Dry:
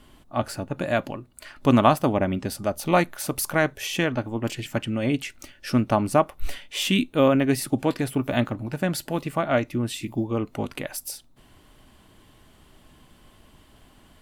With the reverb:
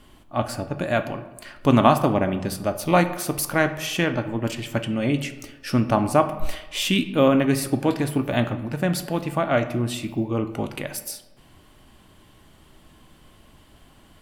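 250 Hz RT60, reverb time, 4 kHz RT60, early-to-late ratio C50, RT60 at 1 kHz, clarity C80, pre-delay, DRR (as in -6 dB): 1.1 s, 1.1 s, 0.65 s, 12.0 dB, 1.1 s, 14.0 dB, 3 ms, 8.5 dB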